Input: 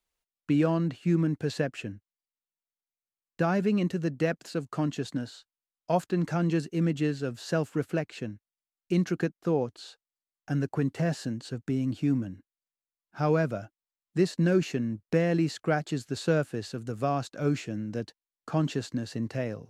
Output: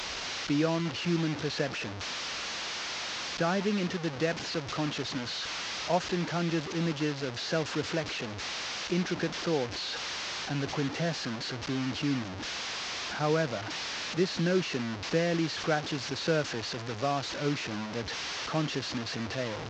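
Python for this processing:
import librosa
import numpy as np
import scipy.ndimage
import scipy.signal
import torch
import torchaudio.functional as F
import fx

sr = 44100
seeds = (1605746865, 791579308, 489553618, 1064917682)

y = fx.delta_mod(x, sr, bps=32000, step_db=-28.5)
y = scipy.signal.sosfilt(scipy.signal.butter(2, 46.0, 'highpass', fs=sr, output='sos'), y)
y = fx.low_shelf(y, sr, hz=360.0, db=-6.0)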